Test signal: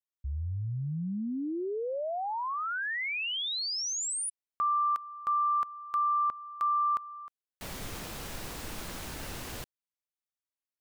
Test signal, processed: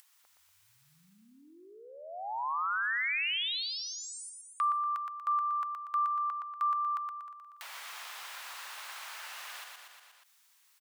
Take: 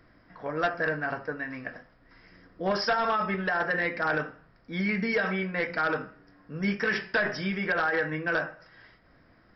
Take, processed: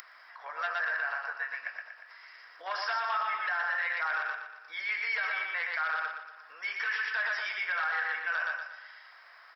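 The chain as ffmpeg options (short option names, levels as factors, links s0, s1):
-filter_complex "[0:a]acrossover=split=4000[s0][s1];[s1]acompressor=threshold=0.00355:ratio=4:attack=1:release=60[s2];[s0][s2]amix=inputs=2:normalize=0,highpass=f=910:w=0.5412,highpass=f=910:w=1.3066,aecho=1:1:119|238|357|476|595:0.631|0.259|0.106|0.0435|0.0178,acompressor=mode=upward:threshold=0.00316:ratio=2.5:attack=39:release=41:knee=2.83:detection=peak,alimiter=limit=0.0708:level=0:latency=1:release=36"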